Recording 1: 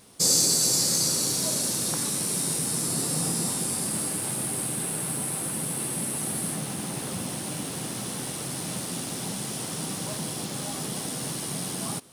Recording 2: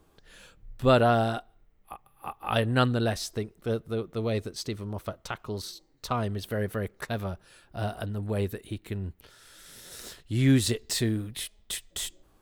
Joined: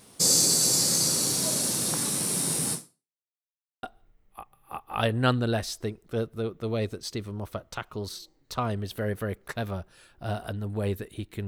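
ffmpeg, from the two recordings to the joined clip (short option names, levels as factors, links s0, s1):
-filter_complex "[0:a]apad=whole_dur=11.47,atrim=end=11.47,asplit=2[s0][s1];[s0]atrim=end=3.19,asetpts=PTS-STARTPTS,afade=t=out:st=2.73:d=0.46:c=exp[s2];[s1]atrim=start=3.19:end=3.83,asetpts=PTS-STARTPTS,volume=0[s3];[1:a]atrim=start=1.36:end=9,asetpts=PTS-STARTPTS,afade=t=in:d=0.004:c=hsin[s4];[s2][s3][s4]concat=n=3:v=0:a=1"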